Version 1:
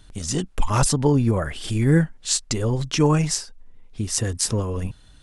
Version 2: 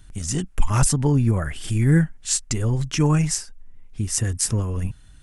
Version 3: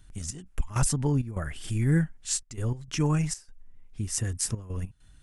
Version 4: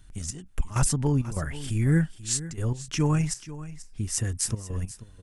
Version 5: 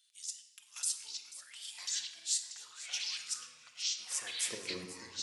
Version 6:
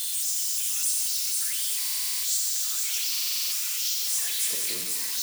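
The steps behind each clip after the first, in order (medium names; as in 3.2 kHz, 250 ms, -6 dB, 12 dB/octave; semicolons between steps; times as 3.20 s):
graphic EQ 250/500/1000/4000 Hz -3/-8/-5/-9 dB; trim +3 dB
trance gate "xx.x.xxx.xxxxx" 99 bpm -12 dB; trim -6.5 dB
delay 487 ms -15.5 dB; trim +1.5 dB
high-pass sweep 3.7 kHz -> 320 Hz, 3.68–4.68 s; ever faster or slower copies 765 ms, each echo -5 st, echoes 3; simulated room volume 1400 m³, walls mixed, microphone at 0.93 m; trim -8 dB
zero-crossing glitches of -23.5 dBFS; thinning echo 90 ms, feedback 84%, high-pass 980 Hz, level -9 dB; buffer glitch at 1.81/3.10 s, samples 2048, times 8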